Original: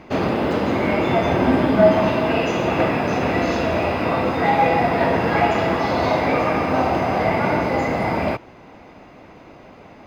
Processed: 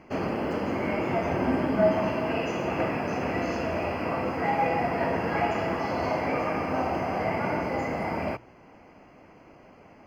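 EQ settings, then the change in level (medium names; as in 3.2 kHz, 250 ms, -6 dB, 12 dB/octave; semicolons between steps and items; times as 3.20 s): Butterworth band-stop 3.7 kHz, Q 3.4; hum notches 60/120 Hz; -8.5 dB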